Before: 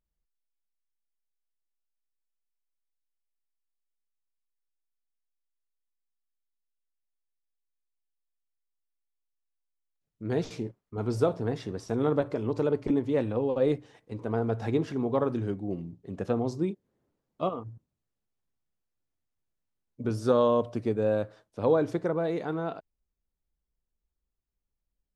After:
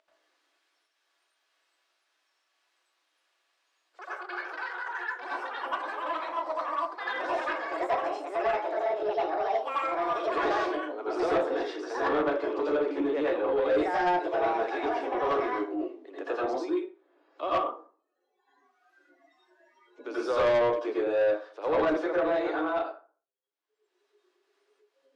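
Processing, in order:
delay with pitch and tempo change per echo 318 ms, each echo +7 semitones, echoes 3, each echo −6 dB
Butterworth high-pass 290 Hz 72 dB per octave
0:14.63–0:15.20: downward compressor 5 to 1, threshold −29 dBFS, peak gain reduction 7.5 dB
noise reduction from a noise print of the clip's start 30 dB
upward compression, threshold −37 dBFS
low-pass filter 3,900 Hz 12 dB per octave
low-shelf EQ 490 Hz −10.5 dB
convolution reverb RT60 0.40 s, pre-delay 78 ms, DRR −7.5 dB
soft clipping −21 dBFS, distortion −12 dB
level +1 dB

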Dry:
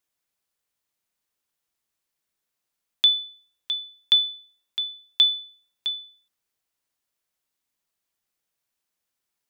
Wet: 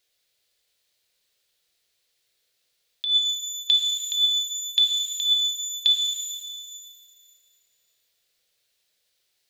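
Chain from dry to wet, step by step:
octave-band graphic EQ 250/500/1,000/2,000/4,000 Hz −10/+9/−9/+3/+10 dB
compressor whose output falls as the input rises −19 dBFS, ratio −1
reverb with rising layers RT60 2 s, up +12 semitones, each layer −8 dB, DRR 4.5 dB

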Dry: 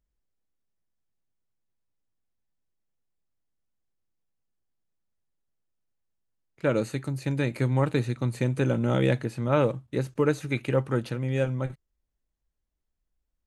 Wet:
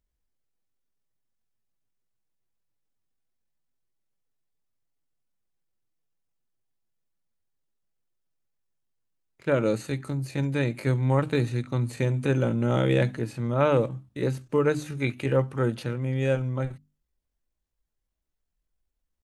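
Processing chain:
tempo change 0.7×
mains-hum notches 50/100/150/200/250/300 Hz
level +1 dB

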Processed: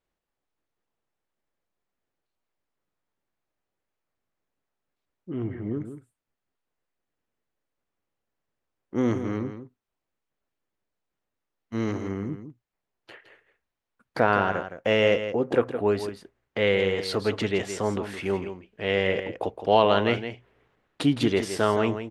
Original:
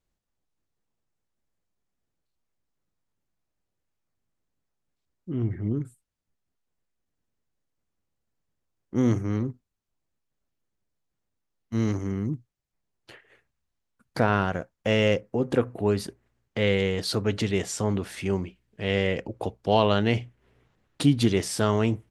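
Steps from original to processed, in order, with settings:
bass and treble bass −10 dB, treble −10 dB
single-tap delay 165 ms −10 dB
level +3 dB

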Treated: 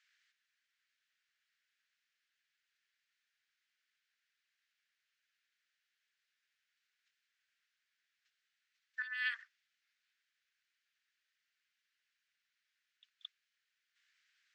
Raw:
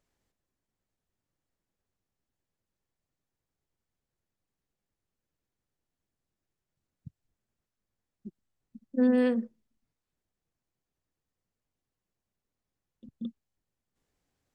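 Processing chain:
0:09.02–0:09.43: compressor whose output falls as the input rises −31 dBFS, ratio −1
Butterworth high-pass 1,500 Hz 48 dB per octave
high-frequency loss of the air 170 metres
level +15 dB

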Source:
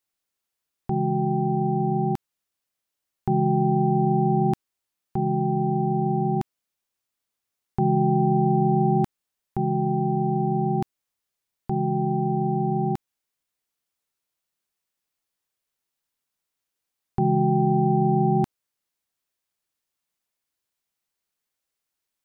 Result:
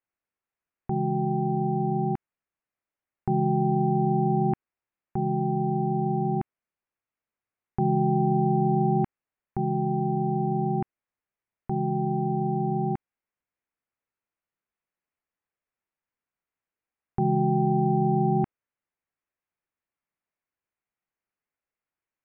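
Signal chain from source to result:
Butterworth low-pass 2,500 Hz
level −2.5 dB

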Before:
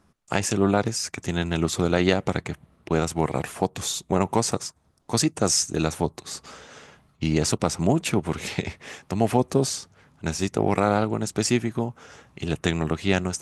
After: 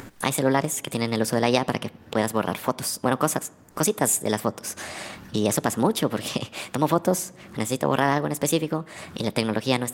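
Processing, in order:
upward compression, threshold −24 dBFS
on a send at −20.5 dB: convolution reverb RT60 1.3 s, pre-delay 7 ms
on the sum: wrong playback speed 33 rpm record played at 45 rpm

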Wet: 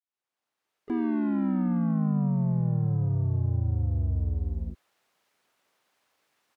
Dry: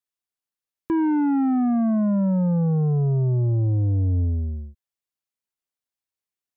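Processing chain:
fade in at the beginning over 2.15 s
mid-hump overdrive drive 39 dB, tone 1,300 Hz, clips at −18.5 dBFS
pitch-shifted copies added −5 semitones 0 dB, +3 semitones −17 dB, +4 semitones −12 dB
level −6.5 dB

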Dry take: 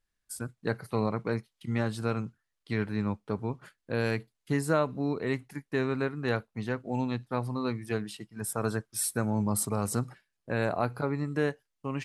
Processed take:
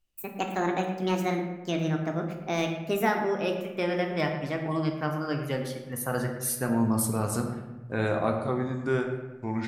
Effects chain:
gliding playback speed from 169% → 80%
bucket-brigade delay 112 ms, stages 2,048, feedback 49%, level −10.5 dB
on a send at −3.5 dB: convolution reverb RT60 0.85 s, pre-delay 3 ms

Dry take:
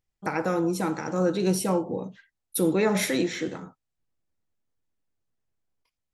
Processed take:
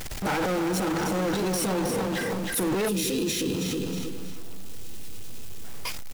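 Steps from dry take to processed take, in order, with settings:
power curve on the samples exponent 0.35
on a send: repeating echo 317 ms, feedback 26%, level −6.5 dB
on the sum: transient designer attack −9 dB, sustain +9 dB
gain on a spectral selection 0:02.88–0:05.64, 520–2,400 Hz −15 dB
downward compressor 4 to 1, threshold −30 dBFS, peak gain reduction 13 dB
bit-depth reduction 8 bits, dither none
level +3 dB

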